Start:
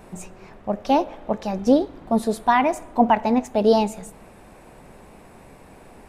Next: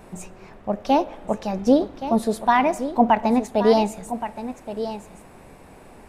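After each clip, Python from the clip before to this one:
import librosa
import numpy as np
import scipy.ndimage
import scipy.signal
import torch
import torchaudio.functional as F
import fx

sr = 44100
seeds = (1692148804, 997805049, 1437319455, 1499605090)

y = x + 10.0 ** (-11.5 / 20.0) * np.pad(x, (int(1122 * sr / 1000.0), 0))[:len(x)]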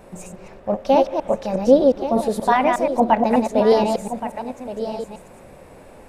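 y = fx.reverse_delay(x, sr, ms=120, wet_db=-3)
y = fx.peak_eq(y, sr, hz=540.0, db=9.0, octaves=0.3)
y = y * librosa.db_to_amplitude(-1.0)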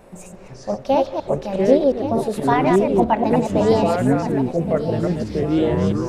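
y = fx.echo_pitch(x, sr, ms=324, semitones=-6, count=3, db_per_echo=-3.0)
y = y * librosa.db_to_amplitude(-2.0)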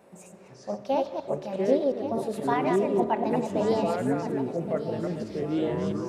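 y = scipy.signal.sosfilt(scipy.signal.butter(2, 150.0, 'highpass', fs=sr, output='sos'), x)
y = fx.rev_fdn(y, sr, rt60_s=3.0, lf_ratio=1.0, hf_ratio=0.4, size_ms=15.0, drr_db=13.0)
y = y * librosa.db_to_amplitude(-8.5)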